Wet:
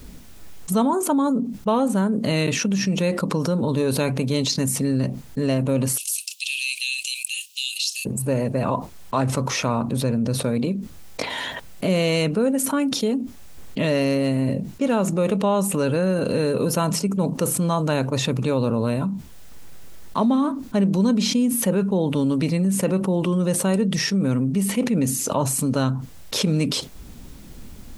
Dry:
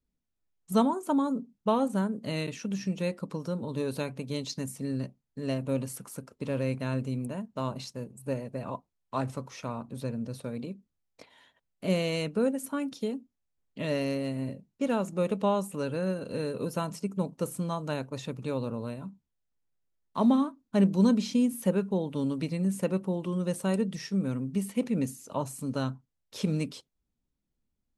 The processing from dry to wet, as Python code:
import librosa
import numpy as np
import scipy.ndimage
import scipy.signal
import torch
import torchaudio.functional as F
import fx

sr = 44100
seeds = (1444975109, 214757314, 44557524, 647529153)

y = fx.cheby1_highpass(x, sr, hz=2600.0, order=6, at=(5.96, 8.05), fade=0.02)
y = fx.env_flatten(y, sr, amount_pct=70)
y = F.gain(torch.from_numpy(y), 2.0).numpy()